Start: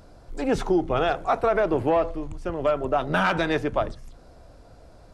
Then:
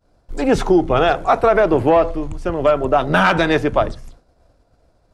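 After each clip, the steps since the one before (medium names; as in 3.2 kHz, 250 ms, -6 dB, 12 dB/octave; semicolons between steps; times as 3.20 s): expander -37 dBFS; trim +8 dB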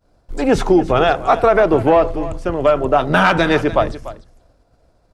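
delay 293 ms -15.5 dB; trim +1 dB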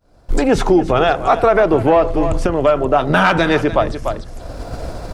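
recorder AGC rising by 38 dB/s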